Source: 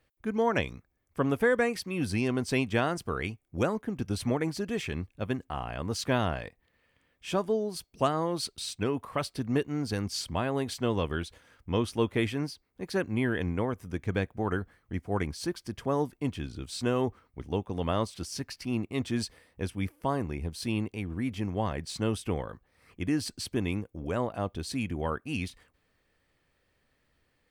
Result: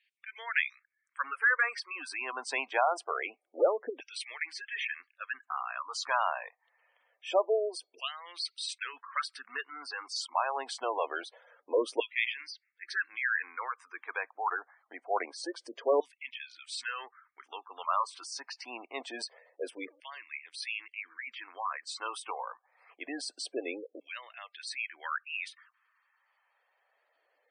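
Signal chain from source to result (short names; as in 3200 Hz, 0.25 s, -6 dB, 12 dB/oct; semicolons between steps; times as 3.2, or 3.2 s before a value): elliptic band-pass 270–9200 Hz, stop band 40 dB; LFO high-pass saw down 0.25 Hz 470–2500 Hz; spectral gate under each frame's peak -15 dB strong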